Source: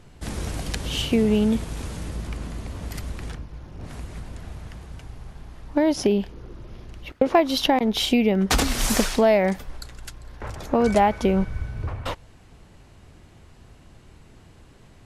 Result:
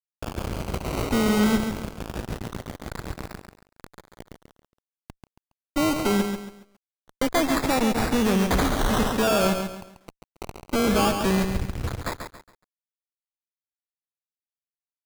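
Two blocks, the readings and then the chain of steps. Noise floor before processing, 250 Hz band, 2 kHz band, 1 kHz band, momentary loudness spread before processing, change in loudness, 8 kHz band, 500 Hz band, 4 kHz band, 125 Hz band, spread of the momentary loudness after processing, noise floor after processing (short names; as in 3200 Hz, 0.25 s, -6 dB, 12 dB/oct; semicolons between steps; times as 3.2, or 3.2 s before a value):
-50 dBFS, -1.0 dB, +1.0 dB, -1.5 dB, 21 LU, -1.5 dB, -1.5 dB, -3.5 dB, -3.5 dB, -0.5 dB, 16 LU, under -85 dBFS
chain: added harmonics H 3 -12 dB, 4 -22 dB, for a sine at -5.5 dBFS; fuzz box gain 41 dB, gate -40 dBFS; decimation with a swept rate 20×, swing 60% 0.22 Hz; lo-fi delay 0.138 s, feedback 35%, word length 8-bit, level -6.5 dB; gain -6 dB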